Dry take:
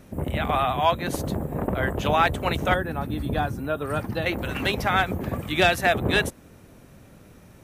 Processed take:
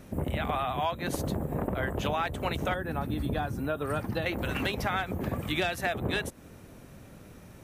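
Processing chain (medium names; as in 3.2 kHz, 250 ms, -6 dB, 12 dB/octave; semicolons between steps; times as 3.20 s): compression 5:1, threshold -27 dBFS, peak gain reduction 11.5 dB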